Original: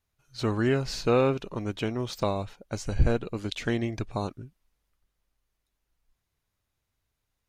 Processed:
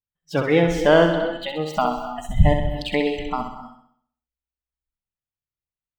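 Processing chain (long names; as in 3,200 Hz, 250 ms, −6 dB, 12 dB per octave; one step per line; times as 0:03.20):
speed change +25%
flat-topped bell 7,600 Hz −12 dB
in parallel at −3.5 dB: asymmetric clip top −18 dBFS
on the sum: noise reduction from a noise print of the clip's start 27 dB
on a send: flutter between parallel walls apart 11.1 metres, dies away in 0.6 s
on the sum: reverb whose tail is shaped and stops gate 300 ms rising, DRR 10.5 dB
level +3.5 dB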